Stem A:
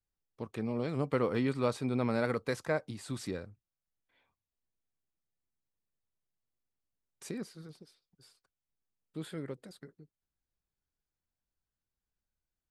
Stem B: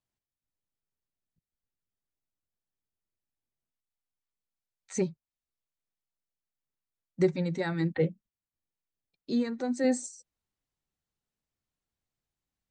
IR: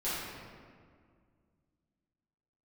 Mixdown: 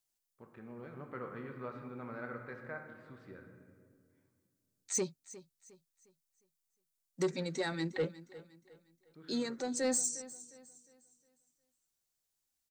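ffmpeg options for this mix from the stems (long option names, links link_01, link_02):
-filter_complex "[0:a]lowpass=2300,equalizer=frequency=1500:width=1.5:gain=10,volume=-18dB,asplit=2[link_01][link_02];[link_02]volume=-8.5dB[link_03];[1:a]bass=frequency=250:gain=-9,treble=frequency=4000:gain=13,asoftclip=type=tanh:threshold=-22.5dB,volume=-2.5dB,asplit=2[link_04][link_05];[link_05]volume=-17.5dB[link_06];[2:a]atrim=start_sample=2205[link_07];[link_03][link_07]afir=irnorm=-1:irlink=0[link_08];[link_06]aecho=0:1:357|714|1071|1428|1785:1|0.36|0.13|0.0467|0.0168[link_09];[link_01][link_04][link_08][link_09]amix=inputs=4:normalize=0"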